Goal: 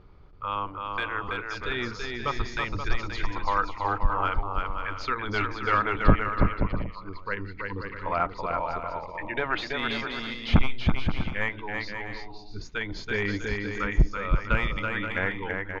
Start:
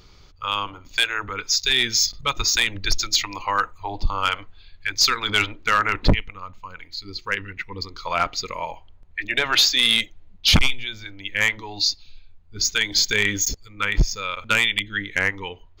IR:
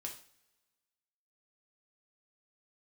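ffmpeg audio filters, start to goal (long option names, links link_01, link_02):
-af "lowpass=1300,aecho=1:1:330|528|646.8|718.1|760.8:0.631|0.398|0.251|0.158|0.1,volume=-1.5dB"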